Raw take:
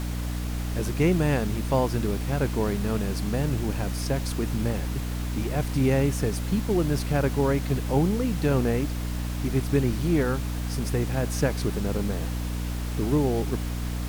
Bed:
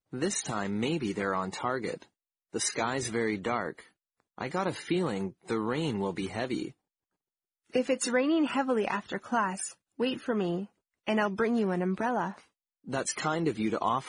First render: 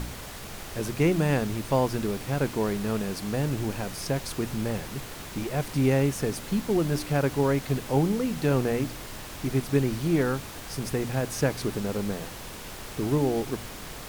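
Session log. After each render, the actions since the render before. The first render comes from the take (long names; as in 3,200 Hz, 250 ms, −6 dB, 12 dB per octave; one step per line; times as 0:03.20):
hum removal 60 Hz, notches 5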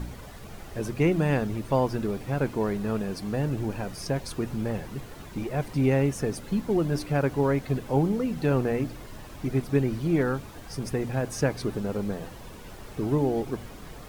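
broadband denoise 10 dB, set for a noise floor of −40 dBFS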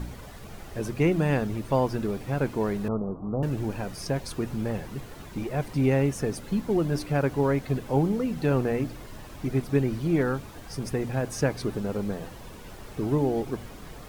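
0:02.88–0:03.43: Butterworth low-pass 1,300 Hz 96 dB per octave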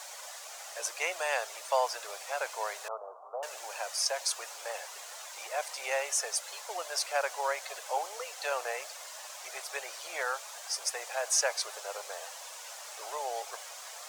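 Butterworth high-pass 570 Hz 48 dB per octave
parametric band 6,800 Hz +12.5 dB 1.3 octaves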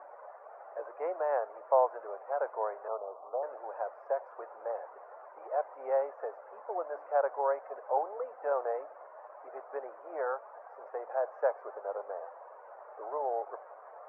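inverse Chebyshev low-pass filter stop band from 3,600 Hz, stop band 50 dB
spectral tilt −5.5 dB per octave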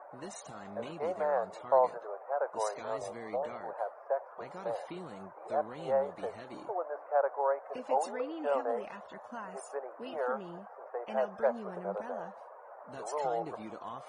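mix in bed −15.5 dB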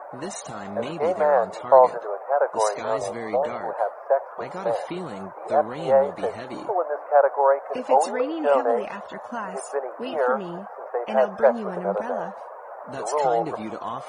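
level +11.5 dB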